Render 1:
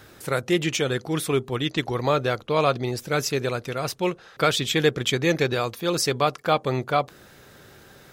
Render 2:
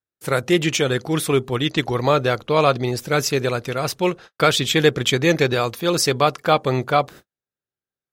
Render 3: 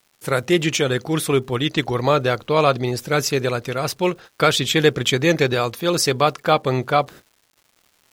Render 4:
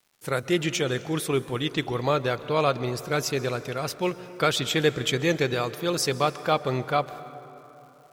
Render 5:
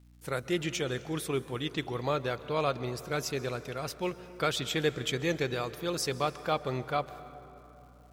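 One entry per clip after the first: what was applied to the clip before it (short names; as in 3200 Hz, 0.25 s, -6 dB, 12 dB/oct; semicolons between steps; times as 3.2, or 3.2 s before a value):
gate -41 dBFS, range -51 dB; gain +4.5 dB
crackle 370/s -44 dBFS
plate-style reverb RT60 3.5 s, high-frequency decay 0.5×, pre-delay 0.115 s, DRR 14.5 dB; gain -6.5 dB
hum 60 Hz, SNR 24 dB; gain -6.5 dB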